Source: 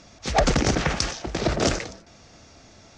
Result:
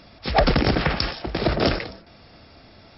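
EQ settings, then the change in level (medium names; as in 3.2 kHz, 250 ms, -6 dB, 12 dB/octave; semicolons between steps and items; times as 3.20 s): brick-wall FIR low-pass 5.5 kHz; +2.0 dB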